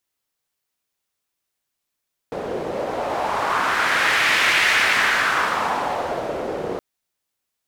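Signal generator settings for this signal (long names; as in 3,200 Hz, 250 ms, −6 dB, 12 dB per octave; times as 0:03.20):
wind from filtered noise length 4.47 s, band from 470 Hz, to 2,100 Hz, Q 2.2, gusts 1, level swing 10 dB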